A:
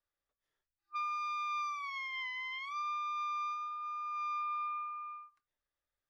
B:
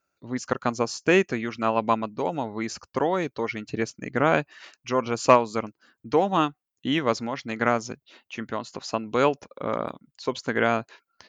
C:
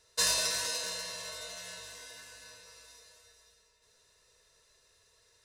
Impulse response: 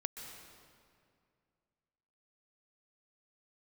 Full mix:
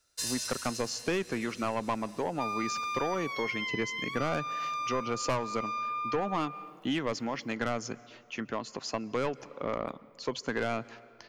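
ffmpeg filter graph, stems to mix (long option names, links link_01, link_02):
-filter_complex "[0:a]crystalizer=i=3:c=0,adelay=1450,volume=1.5dB[link_01];[1:a]highpass=frequency=110:poles=1,asoftclip=type=tanh:threshold=-18.5dB,volume=-2.5dB,asplit=2[link_02][link_03];[link_03]volume=-15.5dB[link_04];[2:a]equalizer=frequency=580:width=0.36:gain=-14.5,volume=-4dB[link_05];[3:a]atrim=start_sample=2205[link_06];[link_04][link_06]afir=irnorm=-1:irlink=0[link_07];[link_01][link_02][link_05][link_07]amix=inputs=4:normalize=0,bandreject=frequency=3800:width=15,acrossover=split=150[link_08][link_09];[link_09]acompressor=threshold=-28dB:ratio=3[link_10];[link_08][link_10]amix=inputs=2:normalize=0"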